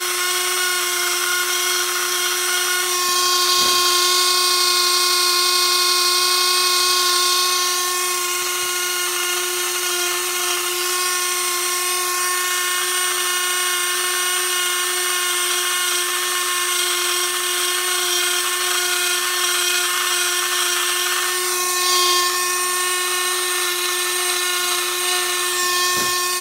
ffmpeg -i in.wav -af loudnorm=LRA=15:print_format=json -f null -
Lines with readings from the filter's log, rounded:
"input_i" : "-16.9",
"input_tp" : "-2.1",
"input_lra" : "3.7",
"input_thresh" : "-26.9",